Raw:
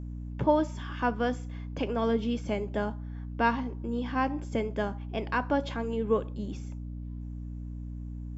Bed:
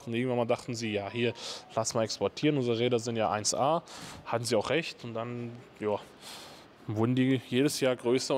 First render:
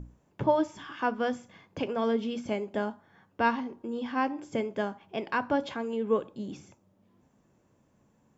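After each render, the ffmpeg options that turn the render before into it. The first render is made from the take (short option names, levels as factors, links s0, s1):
-af "bandreject=f=60:t=h:w=6,bandreject=f=120:t=h:w=6,bandreject=f=180:t=h:w=6,bandreject=f=240:t=h:w=6,bandreject=f=300:t=h:w=6"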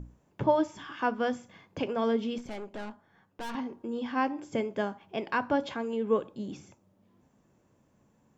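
-filter_complex "[0:a]asettb=1/sr,asplit=3[s0][s1][s2];[s0]atrim=end=2.384[s3];[s1]atrim=start=2.38:end=3.55,asetpts=PTS-STARTPTS,afade=t=in:d=0.004:c=qsin,afade=t=out:st=1.166:d=0.004:c=qsin,aeval=exprs='(tanh(63.1*val(0)+0.7)-tanh(0.7))/63.1':c=same[s4];[s2]atrim=start=3.546[s5];[s3][s4]acrossfade=d=0.004:c1=hsin:c2=qsin[s6];[s6][s5]acrossfade=d=0.004:c1=qsin:c2=hsin"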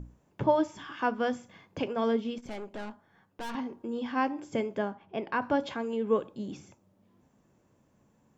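-filter_complex "[0:a]asplit=3[s0][s1][s2];[s0]afade=t=out:st=1.88:d=0.02[s3];[s1]agate=range=0.0224:threshold=0.0282:ratio=3:release=100:detection=peak,afade=t=in:st=1.88:d=0.02,afade=t=out:st=2.42:d=0.02[s4];[s2]afade=t=in:st=2.42:d=0.02[s5];[s3][s4][s5]amix=inputs=3:normalize=0,asettb=1/sr,asplit=3[s6][s7][s8];[s6]atrim=end=4.784[s9];[s7]atrim=start=4.78:end=5.42,asetpts=PTS-STARTPTS,afade=t=in:d=0.004:c=qsin,afade=t=out:st=0.636:d=0.004:c=qsin,lowpass=f=2100:p=1[s10];[s8]atrim=start=5.416[s11];[s9][s10]acrossfade=d=0.004:c1=hsin:c2=qsin[s12];[s12][s11]acrossfade=d=0.004:c1=qsin:c2=hsin"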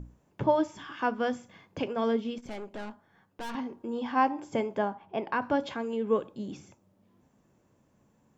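-filter_complex "[0:a]asettb=1/sr,asplit=3[s0][s1][s2];[s0]atrim=end=3.874[s3];[s1]atrim=start=3.87:end=5.34,asetpts=PTS-STARTPTS,afade=t=in:d=0.004:c=qsin,afade=t=out:st=1.466:d=0.004:c=qsin,equalizer=f=870:t=o:w=0.77:g=7[s4];[s2]atrim=start=5.336[s5];[s3][s4]acrossfade=d=0.004:c1=hsin:c2=qsin[s6];[s6][s5]acrossfade=d=0.004:c1=qsin:c2=hsin"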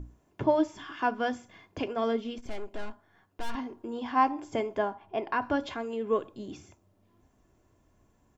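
-af "aecho=1:1:2.9:0.39,asubboost=boost=3.5:cutoff=85"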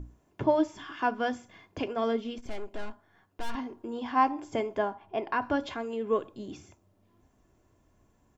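-af anull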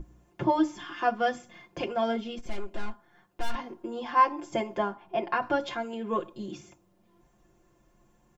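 -af "bandreject=f=60:t=h:w=6,bandreject=f=120:t=h:w=6,bandreject=f=180:t=h:w=6,bandreject=f=240:t=h:w=6,bandreject=f=300:t=h:w=6,aecho=1:1:5.7:0.95"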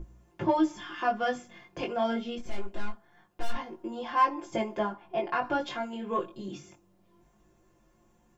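-filter_complex "[0:a]asplit=2[s0][s1];[s1]asoftclip=type=tanh:threshold=0.0708,volume=0.335[s2];[s0][s2]amix=inputs=2:normalize=0,flanger=delay=18:depth=3.1:speed=0.24"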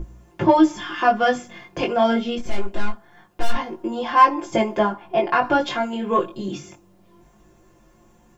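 -af "volume=3.35"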